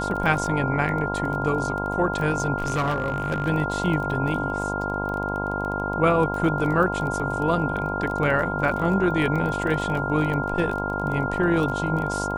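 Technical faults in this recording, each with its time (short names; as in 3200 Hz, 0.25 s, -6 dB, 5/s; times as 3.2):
buzz 50 Hz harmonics 21 -29 dBFS
crackle 22/s -29 dBFS
tone 1400 Hz -28 dBFS
2.58–3.49 clipped -19.5 dBFS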